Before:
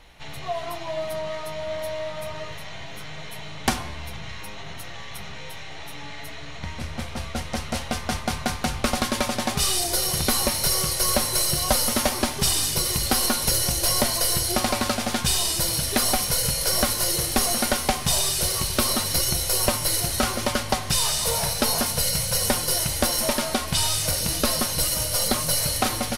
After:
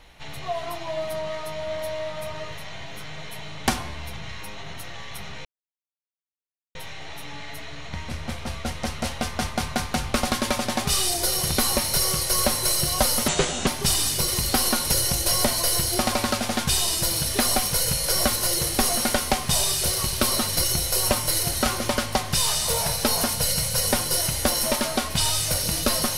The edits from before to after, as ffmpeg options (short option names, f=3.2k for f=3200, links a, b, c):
-filter_complex "[0:a]asplit=4[a][b][c][d];[a]atrim=end=5.45,asetpts=PTS-STARTPTS,afade=t=out:st=5.446:d=0.004:c=hsin,apad=pad_dur=1.3[e];[b]atrim=start=5.45:end=11.984,asetpts=PTS-STARTPTS,afade=t=in:d=0.004:c=hsin[f];[c]atrim=start=11.98:end=12.24,asetpts=PTS-STARTPTS,asetrate=29547,aresample=44100,atrim=end_sample=17113,asetpts=PTS-STARTPTS[g];[d]atrim=start=12.236[h];[e][f]concat=n=2:v=0:a=1[i];[i][g]acrossfade=d=0.004:c1=hsin:c2=hsin[j];[j][h]acrossfade=d=0.004:c1=hsin:c2=hsin"